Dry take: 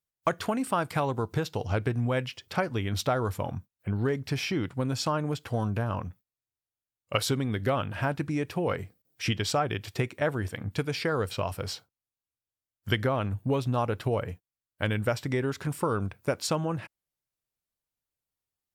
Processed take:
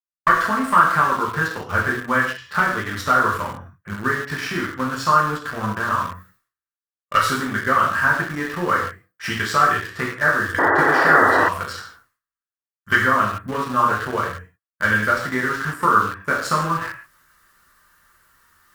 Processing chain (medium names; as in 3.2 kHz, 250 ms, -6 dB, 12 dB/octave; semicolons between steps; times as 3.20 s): one-sided wavefolder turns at -18.5 dBFS; reverse; upward compressor, threshold -37 dBFS; reverse; gate with hold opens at -53 dBFS; high-order bell 1.4 kHz +16 dB 1.1 oct; gated-style reverb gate 210 ms falling, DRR -4.5 dB; in parallel at -5 dB: small samples zeroed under -21 dBFS; on the sum: painted sound noise, 10.58–11.49 s, 250–2000 Hz -10 dBFS; trim -6.5 dB